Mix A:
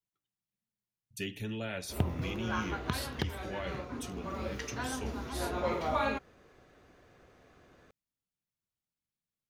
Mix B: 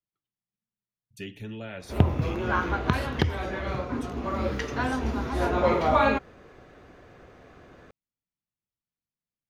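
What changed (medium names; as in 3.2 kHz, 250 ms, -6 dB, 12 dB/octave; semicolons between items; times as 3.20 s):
background +10.0 dB; master: add treble shelf 4.4 kHz -9.5 dB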